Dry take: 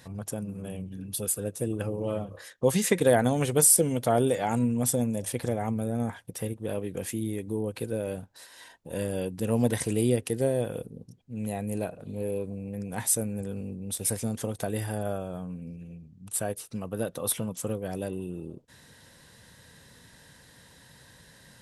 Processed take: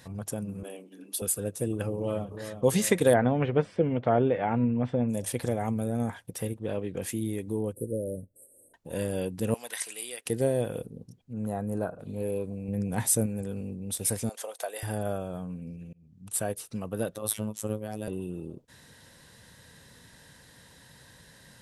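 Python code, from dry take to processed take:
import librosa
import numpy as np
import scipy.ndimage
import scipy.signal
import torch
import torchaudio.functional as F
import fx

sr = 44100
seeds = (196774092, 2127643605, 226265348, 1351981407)

y = fx.steep_highpass(x, sr, hz=260.0, slope=36, at=(0.63, 1.22))
y = fx.echo_throw(y, sr, start_s=1.95, length_s=0.6, ms=360, feedback_pct=60, wet_db=-9.0)
y = fx.lowpass(y, sr, hz=2600.0, slope=24, at=(3.13, 5.08), fade=0.02)
y = fx.lowpass(y, sr, hz=5200.0, slope=12, at=(6.59, 7.02))
y = fx.cheby1_bandstop(y, sr, low_hz=580.0, high_hz=8300.0, order=5, at=(7.73, 8.74))
y = fx.highpass(y, sr, hz=1300.0, slope=12, at=(9.54, 10.26))
y = fx.high_shelf_res(y, sr, hz=1800.0, db=-8.0, q=3.0, at=(11.33, 11.99))
y = fx.low_shelf(y, sr, hz=410.0, db=6.5, at=(12.68, 13.26))
y = fx.cheby1_highpass(y, sr, hz=570.0, order=3, at=(14.29, 14.83))
y = fx.robotise(y, sr, hz=107.0, at=(17.15, 18.08))
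y = fx.edit(y, sr, fx.fade_in_span(start_s=15.93, length_s=0.44, curve='qsin'), tone=tone)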